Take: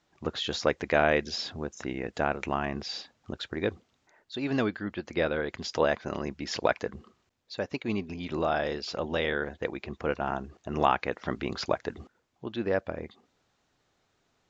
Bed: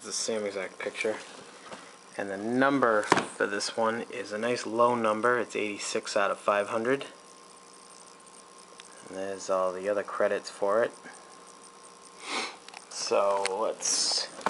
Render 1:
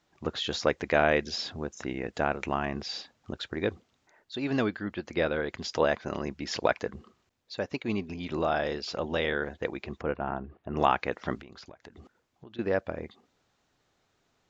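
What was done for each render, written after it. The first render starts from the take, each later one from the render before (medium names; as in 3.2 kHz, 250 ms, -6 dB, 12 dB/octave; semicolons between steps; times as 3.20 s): 10.02–10.77 s: distance through air 490 m; 11.37–12.59 s: compression 12:1, threshold -44 dBFS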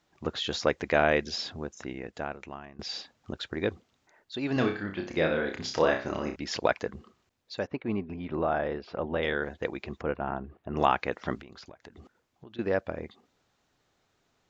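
1.36–2.79 s: fade out linear, to -21 dB; 4.53–6.36 s: flutter echo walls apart 5.3 m, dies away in 0.37 s; 7.67–9.23 s: low-pass 1.8 kHz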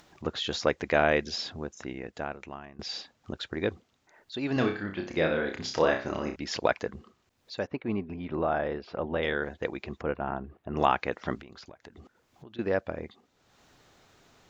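upward compressor, threshold -48 dBFS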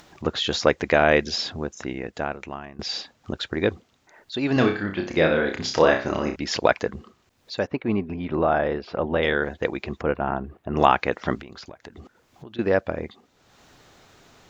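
trim +7 dB; peak limiter -3 dBFS, peak gain reduction 2.5 dB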